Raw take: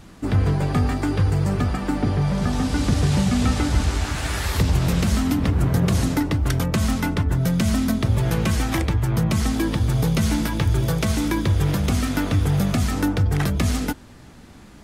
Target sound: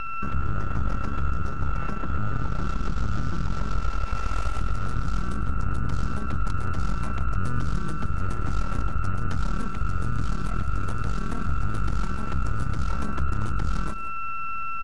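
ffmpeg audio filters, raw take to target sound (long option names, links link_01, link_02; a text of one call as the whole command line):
ffmpeg -i in.wav -filter_complex "[0:a]highshelf=frequency=8200:gain=-9,aeval=exprs='val(0)+0.0708*sin(2*PI*1900*n/s)':channel_layout=same,acrossover=split=190|2200|6200[link_01][link_02][link_03][link_04];[link_01]acompressor=threshold=-20dB:ratio=4[link_05];[link_02]acompressor=threshold=-28dB:ratio=4[link_06];[link_03]acompressor=threshold=-44dB:ratio=4[link_07];[link_04]acompressor=threshold=-42dB:ratio=4[link_08];[link_05][link_06][link_07][link_08]amix=inputs=4:normalize=0,alimiter=limit=-18.5dB:level=0:latency=1:release=148,aeval=exprs='0.299*(cos(1*acos(clip(val(0)/0.299,-1,1)))-cos(1*PI/2))+0.106*(cos(4*acos(clip(val(0)/0.299,-1,1)))-cos(4*PI/2))+0.00188*(cos(5*acos(clip(val(0)/0.299,-1,1)))-cos(5*PI/2))+0.0168*(cos(6*acos(clip(val(0)/0.299,-1,1)))-cos(6*PI/2))+0.0422*(cos(8*acos(clip(val(0)/0.299,-1,1)))-cos(8*PI/2))':channel_layout=same,asetrate=31183,aresample=44100,atempo=1.41421,lowshelf=frequency=69:gain=9.5,asplit=2[link_09][link_10];[link_10]aecho=0:1:105|172:0.158|0.211[link_11];[link_09][link_11]amix=inputs=2:normalize=0,volume=-7dB" out.wav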